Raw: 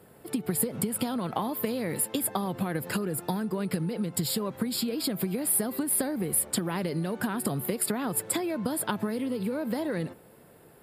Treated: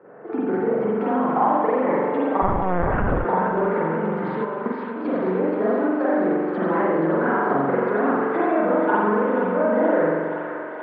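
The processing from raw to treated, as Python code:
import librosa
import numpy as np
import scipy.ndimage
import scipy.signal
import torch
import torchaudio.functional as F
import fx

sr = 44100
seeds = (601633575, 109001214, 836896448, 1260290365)

p1 = fx.spec_quant(x, sr, step_db=15)
p2 = fx.rev_spring(p1, sr, rt60_s=1.4, pass_ms=(43,), chirp_ms=65, drr_db=-8.0)
p3 = 10.0 ** (-23.0 / 20.0) * np.tanh(p2 / 10.0 ** (-23.0 / 20.0))
p4 = p2 + (p3 * 10.0 ** (-4.0 / 20.0))
p5 = fx.level_steps(p4, sr, step_db=9, at=(4.44, 5.05))
p6 = scipy.signal.sosfilt(scipy.signal.butter(2, 370.0, 'highpass', fs=sr, output='sos'), p5)
p7 = fx.lpc_vocoder(p6, sr, seeds[0], excitation='pitch_kept', order=8, at=(2.42, 3.25))
p8 = scipy.signal.sosfilt(scipy.signal.butter(4, 1600.0, 'lowpass', fs=sr, output='sos'), p7)
p9 = fx.echo_thinned(p8, sr, ms=477, feedback_pct=82, hz=660.0, wet_db=-7)
y = p9 * 10.0 ** (3.5 / 20.0)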